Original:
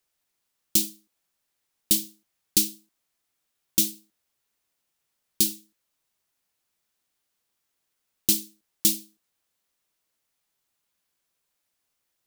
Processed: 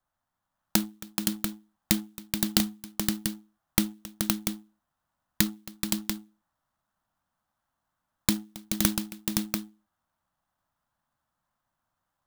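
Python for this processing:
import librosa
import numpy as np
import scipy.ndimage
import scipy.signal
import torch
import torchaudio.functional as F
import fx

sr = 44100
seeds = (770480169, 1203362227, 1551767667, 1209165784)

p1 = fx.wiener(x, sr, points=9)
p2 = fx.env_lowpass_down(p1, sr, base_hz=2400.0, full_db=-23.0)
p3 = np.sign(p2) * np.maximum(np.abs(p2) - 10.0 ** (-47.5 / 20.0), 0.0)
p4 = p2 + (p3 * librosa.db_to_amplitude(-7.5))
p5 = fx.fixed_phaser(p4, sr, hz=1000.0, stages=4)
p6 = p5 + fx.echo_multitap(p5, sr, ms=(271, 428, 518, 690), db=(-19.5, -7.0, -4.5, -7.0), dry=0)
p7 = fx.clock_jitter(p6, sr, seeds[0], jitter_ms=0.045)
y = p7 * librosa.db_to_amplitude(7.0)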